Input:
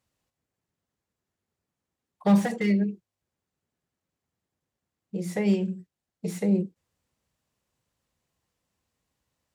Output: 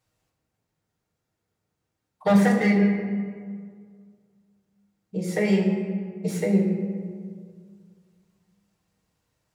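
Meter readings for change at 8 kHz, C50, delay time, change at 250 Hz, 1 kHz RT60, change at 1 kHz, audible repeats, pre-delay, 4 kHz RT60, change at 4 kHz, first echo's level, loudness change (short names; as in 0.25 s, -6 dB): +3.0 dB, 4.5 dB, none, +3.5 dB, 1.9 s, +5.0 dB, none, 6 ms, 1.0 s, +4.0 dB, none, +2.5 dB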